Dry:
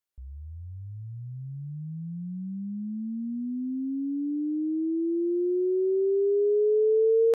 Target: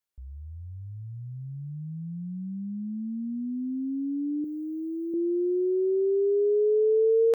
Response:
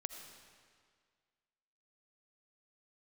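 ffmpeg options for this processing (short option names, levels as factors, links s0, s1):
-filter_complex "[0:a]asettb=1/sr,asplit=3[s0][s1][s2];[s0]atrim=end=4.444[s3];[s1]atrim=start=4.44:end=5.14,asetpts=PTS-STARTPTS,afade=t=in:d=0.004:c=qsin,afade=t=out:st=0.696:d=0.004:c=qsin,aemphasis=mode=production:type=riaa[s4];[s2]atrim=start=5.136[s5];[s3][s4]acrossfade=d=0.004:c1=hsin:c2=qsin[s6];[s6][s5]acrossfade=d=0.004:c1=qsin:c2=hsin"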